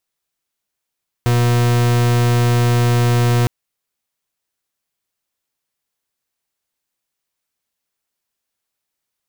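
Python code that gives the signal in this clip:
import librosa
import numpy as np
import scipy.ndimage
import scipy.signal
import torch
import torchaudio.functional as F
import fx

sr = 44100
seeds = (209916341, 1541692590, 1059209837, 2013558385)

y = fx.pulse(sr, length_s=2.21, hz=120.0, level_db=-14.0, duty_pct=42)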